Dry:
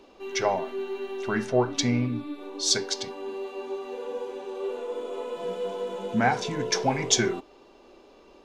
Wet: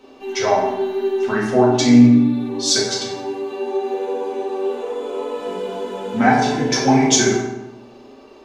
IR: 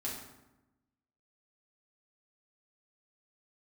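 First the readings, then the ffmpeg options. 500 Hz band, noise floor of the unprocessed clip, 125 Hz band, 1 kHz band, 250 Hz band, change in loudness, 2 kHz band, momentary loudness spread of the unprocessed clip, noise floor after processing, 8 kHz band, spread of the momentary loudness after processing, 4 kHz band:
+9.0 dB, -54 dBFS, +9.5 dB, +9.5 dB, +14.5 dB, +10.0 dB, +7.5 dB, 11 LU, -44 dBFS, +7.5 dB, 14 LU, +6.5 dB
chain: -filter_complex "[0:a]lowshelf=f=110:g=-7[a];[1:a]atrim=start_sample=2205[b];[a][b]afir=irnorm=-1:irlink=0,volume=6.5dB"

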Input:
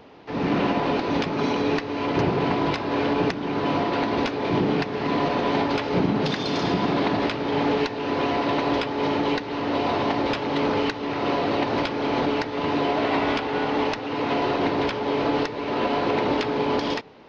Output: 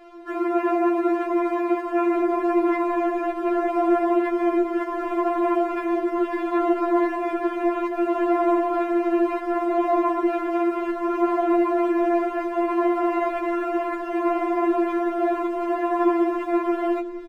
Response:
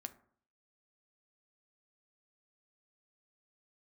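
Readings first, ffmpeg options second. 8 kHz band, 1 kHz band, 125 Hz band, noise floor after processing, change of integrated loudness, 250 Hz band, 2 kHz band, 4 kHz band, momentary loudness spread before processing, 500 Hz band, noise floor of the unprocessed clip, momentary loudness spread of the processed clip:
n/a, +1.0 dB, under -30 dB, -31 dBFS, +1.5 dB, +2.5 dB, -4.5 dB, under -15 dB, 3 LU, +2.0 dB, -32 dBFS, 4 LU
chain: -filter_complex "[0:a]alimiter=limit=-19.5dB:level=0:latency=1:release=51,highpass=f=220:w=0.5412,highpass=f=220:w=1.3066,equalizer=f=260:t=q:w=4:g=-7,equalizer=f=370:t=q:w=4:g=9,equalizer=f=550:t=q:w=4:g=9,equalizer=f=950:t=q:w=4:g=4,equalizer=f=1.5k:t=q:w=4:g=6,lowpass=f=2.2k:w=0.5412,lowpass=f=2.2k:w=1.3066,aeval=exprs='sgn(val(0))*max(abs(val(0))-0.00266,0)':c=same,asplit=7[a][b][c][d][e][f][g];[b]adelay=455,afreqshift=-74,volume=-20dB[h];[c]adelay=910,afreqshift=-148,volume=-23.9dB[i];[d]adelay=1365,afreqshift=-222,volume=-27.8dB[j];[e]adelay=1820,afreqshift=-296,volume=-31.6dB[k];[f]adelay=2275,afreqshift=-370,volume=-35.5dB[l];[g]adelay=2730,afreqshift=-444,volume=-39.4dB[m];[a][h][i][j][k][l][m]amix=inputs=7:normalize=0,asplit=2[n][o];[1:a]atrim=start_sample=2205,lowshelf=f=280:g=11.5[p];[o][p]afir=irnorm=-1:irlink=0,volume=-2dB[q];[n][q]amix=inputs=2:normalize=0,afftfilt=real='re*4*eq(mod(b,16),0)':imag='im*4*eq(mod(b,16),0)':win_size=2048:overlap=0.75"

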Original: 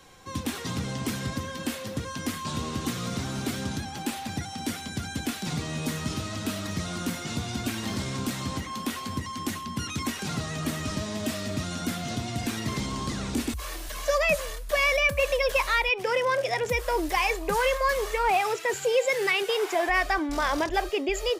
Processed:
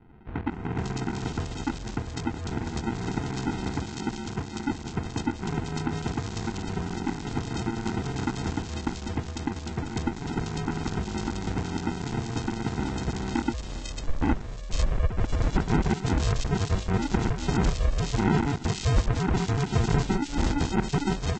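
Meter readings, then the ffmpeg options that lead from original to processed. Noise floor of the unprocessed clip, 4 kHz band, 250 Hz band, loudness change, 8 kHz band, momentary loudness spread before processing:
-38 dBFS, -6.0 dB, +3.5 dB, -1.5 dB, -5.0 dB, 9 LU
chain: -filter_complex "[0:a]acrossover=split=5300[a][b];[b]acompressor=threshold=-51dB:ratio=4:attack=1:release=60[c];[a][c]amix=inputs=2:normalize=0,aresample=16000,acrusher=samples=28:mix=1:aa=0.000001,aresample=44100,acrossover=split=2600[d][e];[e]adelay=500[f];[d][f]amix=inputs=2:normalize=0,volume=1dB" -ar 48000 -c:a aac -b:a 32k

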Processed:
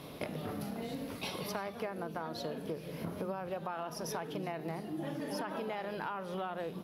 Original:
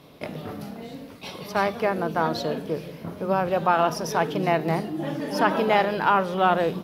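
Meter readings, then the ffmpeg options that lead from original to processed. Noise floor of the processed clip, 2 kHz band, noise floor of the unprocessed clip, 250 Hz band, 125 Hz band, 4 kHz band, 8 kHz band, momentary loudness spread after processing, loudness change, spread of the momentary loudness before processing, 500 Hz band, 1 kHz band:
-46 dBFS, -16.0 dB, -43 dBFS, -11.5 dB, -11.5 dB, -11.0 dB, -7.5 dB, 2 LU, -15.5 dB, 16 LU, -14.5 dB, -17.5 dB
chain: -af "equalizer=f=11k:t=o:w=0.26:g=7.5,alimiter=limit=-12.5dB:level=0:latency=1:release=54,acompressor=threshold=-38dB:ratio=10,volume=2.5dB"

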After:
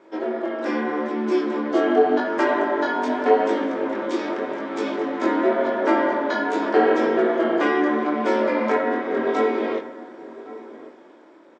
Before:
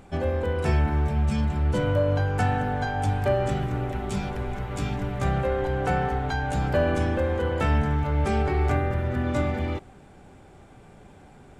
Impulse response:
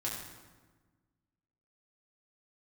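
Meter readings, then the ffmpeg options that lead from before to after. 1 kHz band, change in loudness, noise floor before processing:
+5.5 dB, +4.0 dB, -50 dBFS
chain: -filter_complex "[0:a]dynaudnorm=f=200:g=9:m=5.5dB,aeval=exprs='val(0)*sin(2*PI*150*n/s)':c=same,flanger=delay=18:depth=6.6:speed=0.84,highpass=f=310:w=0.5412,highpass=f=310:w=1.3066,equalizer=f=330:t=q:w=4:g=6,equalizer=f=760:t=q:w=4:g=-4,equalizer=f=2.7k:t=q:w=4:g=-7,equalizer=f=4.2k:t=q:w=4:g=-4,lowpass=f=5.4k:w=0.5412,lowpass=f=5.4k:w=1.3066,asplit=2[a][b];[b]adelay=1108,volume=-17dB,highshelf=f=4k:g=-24.9[c];[a][c]amix=inputs=2:normalize=0,asplit=2[d][e];[1:a]atrim=start_sample=2205[f];[e][f]afir=irnorm=-1:irlink=0,volume=-10dB[g];[d][g]amix=inputs=2:normalize=0,volume=5.5dB"

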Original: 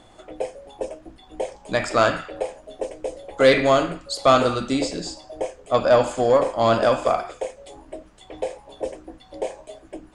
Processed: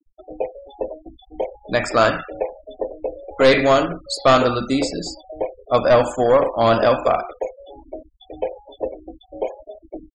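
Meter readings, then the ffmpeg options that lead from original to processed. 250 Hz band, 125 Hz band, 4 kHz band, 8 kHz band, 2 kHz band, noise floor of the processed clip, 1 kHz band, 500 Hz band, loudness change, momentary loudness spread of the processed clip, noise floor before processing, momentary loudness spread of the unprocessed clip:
+2.5 dB, +3.0 dB, +2.0 dB, 0.0 dB, +2.5 dB, -55 dBFS, +2.5 dB, +2.0 dB, +2.0 dB, 20 LU, -51 dBFS, 17 LU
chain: -af "aeval=exprs='clip(val(0),-1,0.188)':c=same,afftfilt=real='re*gte(hypot(re,im),0.02)':imag='im*gte(hypot(re,im),0.02)':win_size=1024:overlap=0.75,volume=3dB"

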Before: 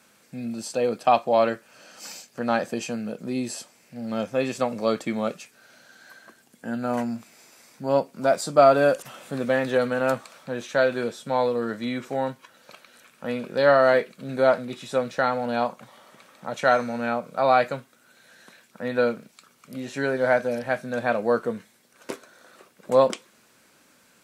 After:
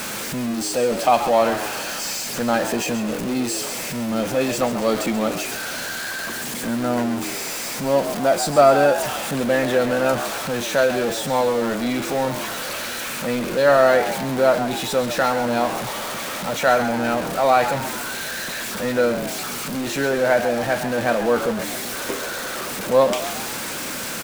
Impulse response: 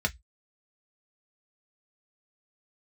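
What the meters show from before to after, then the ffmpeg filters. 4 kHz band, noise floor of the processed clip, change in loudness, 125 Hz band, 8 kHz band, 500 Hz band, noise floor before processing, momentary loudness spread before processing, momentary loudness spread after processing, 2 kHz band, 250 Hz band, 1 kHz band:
+11.0 dB, -29 dBFS, +3.0 dB, +5.5 dB, +14.5 dB, +3.5 dB, -60 dBFS, 17 LU, 9 LU, +5.5 dB, +5.5 dB, +4.0 dB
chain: -filter_complex "[0:a]aeval=exprs='val(0)+0.5*0.0596*sgn(val(0))':c=same,asplit=6[a][b][c][d][e][f];[b]adelay=133,afreqshift=82,volume=-10.5dB[g];[c]adelay=266,afreqshift=164,volume=-16.9dB[h];[d]adelay=399,afreqshift=246,volume=-23.3dB[i];[e]adelay=532,afreqshift=328,volume=-29.6dB[j];[f]adelay=665,afreqshift=410,volume=-36dB[k];[a][g][h][i][j][k]amix=inputs=6:normalize=0,volume=1dB"

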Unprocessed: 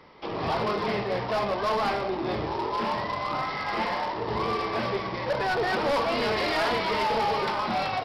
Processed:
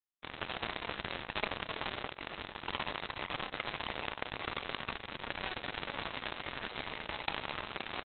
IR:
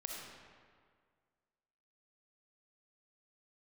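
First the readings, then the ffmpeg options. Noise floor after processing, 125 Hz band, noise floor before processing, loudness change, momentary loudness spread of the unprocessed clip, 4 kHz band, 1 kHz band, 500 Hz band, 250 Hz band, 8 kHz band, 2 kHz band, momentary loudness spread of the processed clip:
-54 dBFS, -13.0 dB, -33 dBFS, -12.0 dB, 5 LU, -6.0 dB, -15.0 dB, -17.5 dB, -15.0 dB, n/a, -8.0 dB, 4 LU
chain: -filter_complex "[0:a]equalizer=f=160:t=o:w=0.67:g=-10,equalizer=f=400:t=o:w=0.67:g=-11,equalizer=f=2.5k:t=o:w=0.67:g=9,acontrast=66,alimiter=limit=-20dB:level=0:latency=1:release=25,acontrast=44,flanger=delay=1.4:depth=5.1:regen=-73:speed=1:shape=sinusoidal,acrusher=bits=2:mix=0:aa=0.5,asplit=2[a][b];[b]adelay=816.3,volume=-21dB,highshelf=f=4k:g=-18.4[c];[a][c]amix=inputs=2:normalize=0,asplit=2[d][e];[1:a]atrim=start_sample=2205[f];[e][f]afir=irnorm=-1:irlink=0,volume=-19dB[g];[d][g]amix=inputs=2:normalize=0,volume=9.5dB" -ar 48000 -c:a libopus -b:a 8k

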